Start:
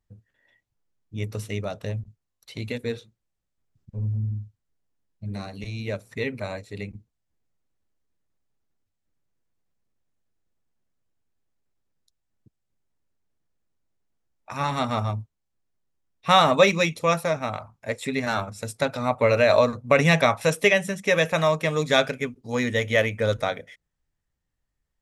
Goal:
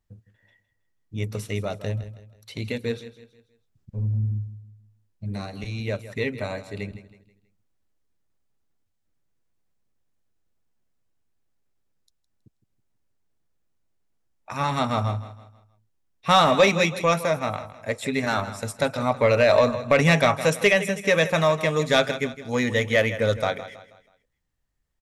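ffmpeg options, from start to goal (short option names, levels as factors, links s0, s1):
-af "aecho=1:1:161|322|483|644:0.188|0.0735|0.0287|0.0112,acontrast=81,volume=0.531"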